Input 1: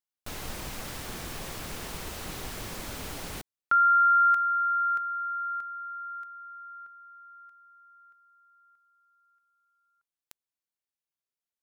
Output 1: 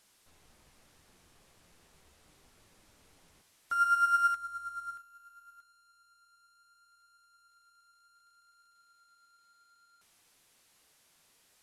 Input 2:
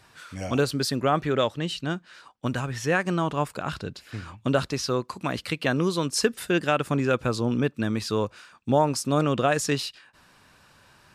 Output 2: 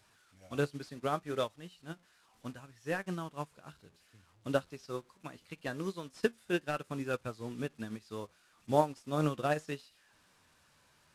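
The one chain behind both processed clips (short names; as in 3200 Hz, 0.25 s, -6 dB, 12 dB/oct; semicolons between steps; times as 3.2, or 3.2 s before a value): delta modulation 64 kbps, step -33.5 dBFS; flange 0.69 Hz, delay 9.4 ms, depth 4.8 ms, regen +68%; upward expander 2.5:1, over -37 dBFS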